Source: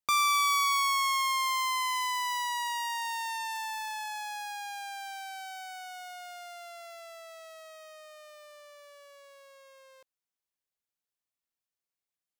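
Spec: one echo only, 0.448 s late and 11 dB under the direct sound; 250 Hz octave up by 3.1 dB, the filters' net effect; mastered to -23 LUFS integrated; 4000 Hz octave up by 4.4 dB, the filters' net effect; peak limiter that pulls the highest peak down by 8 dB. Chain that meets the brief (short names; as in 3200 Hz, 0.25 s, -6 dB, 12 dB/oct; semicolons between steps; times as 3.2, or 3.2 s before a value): bell 250 Hz +4 dB; bell 4000 Hz +5.5 dB; limiter -24.5 dBFS; echo 0.448 s -11 dB; gain +9 dB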